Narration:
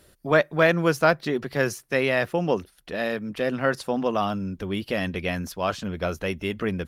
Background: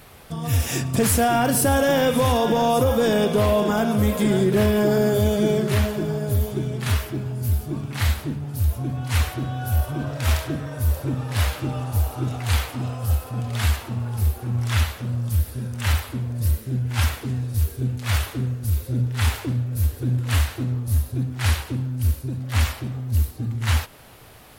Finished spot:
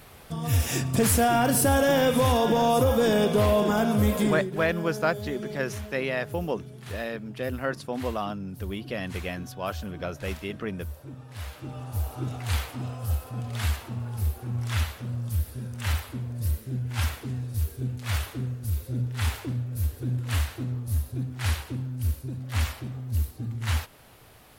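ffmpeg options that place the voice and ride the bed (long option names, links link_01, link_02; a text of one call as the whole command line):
ffmpeg -i stem1.wav -i stem2.wav -filter_complex "[0:a]adelay=4000,volume=-6dB[link_01];[1:a]volume=8dB,afade=type=out:start_time=4.19:duration=0.31:silence=0.199526,afade=type=in:start_time=11.4:duration=0.81:silence=0.298538[link_02];[link_01][link_02]amix=inputs=2:normalize=0" out.wav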